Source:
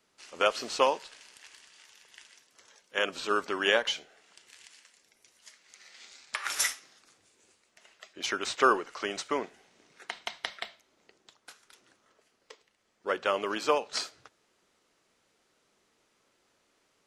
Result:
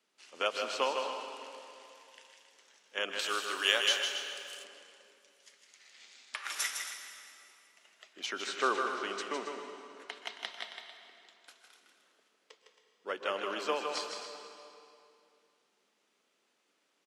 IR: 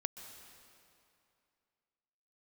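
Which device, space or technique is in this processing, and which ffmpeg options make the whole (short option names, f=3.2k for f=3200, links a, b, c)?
stadium PA: -filter_complex "[0:a]highpass=f=190:w=0.5412,highpass=f=190:w=1.3066,equalizer=f=3k:t=o:w=0.8:g=4,aecho=1:1:157.4|271.1:0.501|0.251[a];[1:a]atrim=start_sample=2205[b];[a][b]afir=irnorm=-1:irlink=0,asettb=1/sr,asplit=3[c][d][e];[c]atrim=end=3.194[f];[d]atrim=start=3.19:end=4.64,asetpts=PTS-STARTPTS,afade=t=in:d=0.004:c=qsin,afade=t=out:st=1.446:d=0.004:c=qsin,aemphasis=mode=production:type=riaa[g];[e]atrim=start=4.636[h];[f][g]acrossfade=d=0.004:c1=hsin:c2=qsin[i];[i][h]acrossfade=d=0.004:c1=qsin:c2=hsin,volume=-6dB"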